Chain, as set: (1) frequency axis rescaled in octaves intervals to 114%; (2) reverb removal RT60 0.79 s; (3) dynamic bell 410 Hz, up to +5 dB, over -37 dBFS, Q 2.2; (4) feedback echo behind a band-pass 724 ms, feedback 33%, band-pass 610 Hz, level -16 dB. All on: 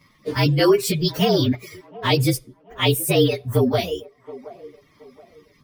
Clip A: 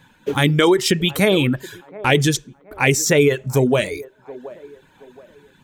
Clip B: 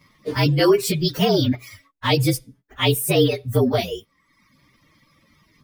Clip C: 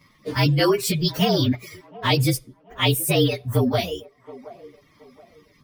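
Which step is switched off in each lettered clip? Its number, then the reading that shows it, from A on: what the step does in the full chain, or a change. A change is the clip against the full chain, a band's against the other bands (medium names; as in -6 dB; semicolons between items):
1, 2 kHz band +5.5 dB; 4, echo-to-direct -19.5 dB to none; 3, momentary loudness spread change -8 LU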